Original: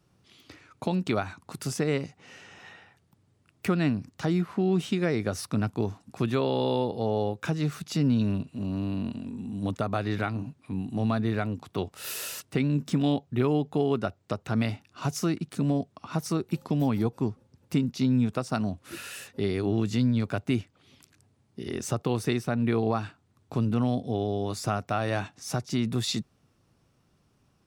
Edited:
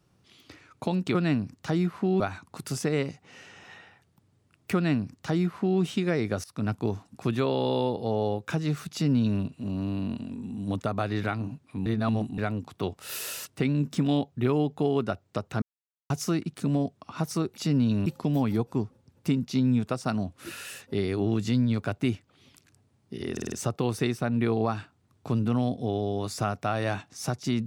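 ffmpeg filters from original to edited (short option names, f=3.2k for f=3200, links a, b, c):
-filter_complex "[0:a]asplit=14[a][b][c][d][e][f][g][h][i][j][k][l][m][n];[a]atrim=end=1.152[o];[b]atrim=start=3.698:end=4.752[p];[c]atrim=start=1.148:end=5.39,asetpts=PTS-STARTPTS,afade=t=out:st=4.238:d=0.004:c=hsin:silence=0.0794328[q];[d]atrim=start=5.39:end=10.812,asetpts=PTS-STARTPTS,afade=t=in:d=0.26:silence=0.0794328[r];[e]atrim=start=10.808:end=11.332,asetpts=PTS-STARTPTS,areverse[s];[f]atrim=start=11.328:end=14.57,asetpts=PTS-STARTPTS,afade=t=out:st=3.238:d=0.004:c=hsin[t];[g]atrim=start=14.57:end=15.05,asetpts=PTS-STARTPTS,volume=0[u];[h]atrim=start=15.05:end=16.522,asetpts=PTS-STARTPTS,afade=t=in:d=0.004:c=hsin[v];[i]atrim=start=7.868:end=8.362[w];[j]atrim=start=16.518:end=21.832[x];[k]atrim=start=21.778:end=21.832[y];[l]atrim=start=21.778:end=21.832[z];[m]atrim=start=21.778:end=21.832[aa];[n]atrim=start=21.778[ab];[o][p]acrossfade=d=0.004:c1=hsin:c2=hsin[ac];[q][r]concat=n=2:v=0:a=1[ad];[ac][ad]acrossfade=d=0.004:c1=hsin:c2=hsin[ae];[ae][s]acrossfade=d=0.004:c1=hsin:c2=hsin[af];[t][u][v]concat=n=3:v=0:a=1[ag];[af][ag]acrossfade=d=0.004:c1=hsin:c2=hsin[ah];[ah][w]acrossfade=d=0.004:c1=hsin:c2=hsin[ai];[ai][x]acrossfade=d=0.004:c1=hsin:c2=hsin[aj];[aj][y]acrossfade=d=0.004:c1=hsin:c2=hsin[ak];[ak][z]acrossfade=d=0.004:c1=hsin:c2=hsin[al];[al][aa]acrossfade=d=0.004:c1=hsin:c2=hsin[am];[am][ab]acrossfade=d=0.004:c1=hsin:c2=hsin"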